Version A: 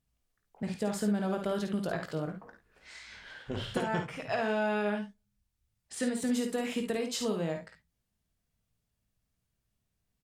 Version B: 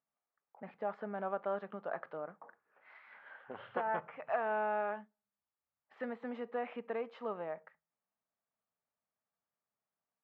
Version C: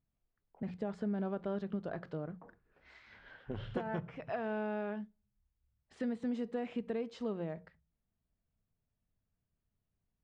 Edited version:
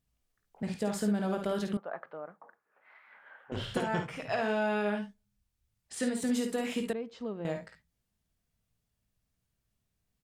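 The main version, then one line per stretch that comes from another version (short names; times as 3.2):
A
1.77–3.52 from B
6.93–7.45 from C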